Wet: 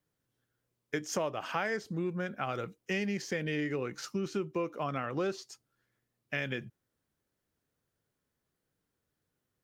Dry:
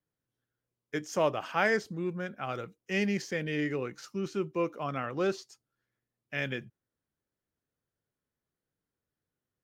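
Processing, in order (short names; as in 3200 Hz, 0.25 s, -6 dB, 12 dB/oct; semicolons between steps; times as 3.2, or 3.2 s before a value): compressor 5:1, threshold -36 dBFS, peak gain reduction 13 dB; gain +5.5 dB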